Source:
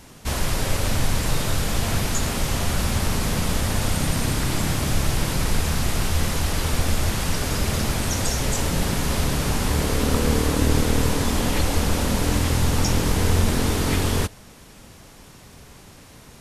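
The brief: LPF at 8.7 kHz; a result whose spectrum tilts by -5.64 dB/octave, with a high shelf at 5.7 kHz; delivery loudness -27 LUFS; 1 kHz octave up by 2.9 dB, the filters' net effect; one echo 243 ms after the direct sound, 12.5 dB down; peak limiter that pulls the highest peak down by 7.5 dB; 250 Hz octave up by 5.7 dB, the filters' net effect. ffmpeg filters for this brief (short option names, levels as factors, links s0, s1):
-af "lowpass=8700,equalizer=f=250:t=o:g=7,equalizer=f=1000:t=o:g=3.5,highshelf=f=5700:g=-8.5,alimiter=limit=0.251:level=0:latency=1,aecho=1:1:243:0.237,volume=0.631"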